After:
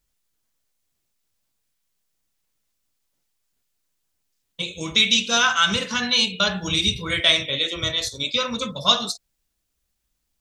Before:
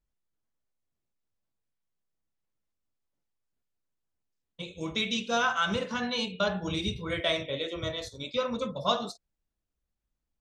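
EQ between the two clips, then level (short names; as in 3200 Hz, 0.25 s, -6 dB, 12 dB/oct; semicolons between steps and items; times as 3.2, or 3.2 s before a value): high shelf 2000 Hz +11.5 dB; dynamic EQ 590 Hz, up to -6 dB, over -39 dBFS, Q 0.75; +6.0 dB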